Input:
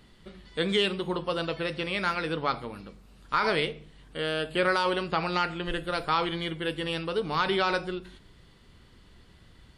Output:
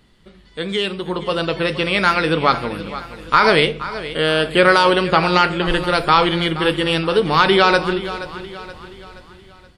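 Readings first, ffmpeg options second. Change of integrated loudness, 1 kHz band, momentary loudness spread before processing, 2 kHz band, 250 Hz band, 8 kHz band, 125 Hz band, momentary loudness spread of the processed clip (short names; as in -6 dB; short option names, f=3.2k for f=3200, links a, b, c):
+12.0 dB, +12.5 dB, 9 LU, +12.5 dB, +12.0 dB, +11.5 dB, +12.0 dB, 15 LU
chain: -af "dynaudnorm=f=530:g=5:m=14dB,aecho=1:1:475|950|1425|1900:0.2|0.0918|0.0422|0.0194,volume=1dB"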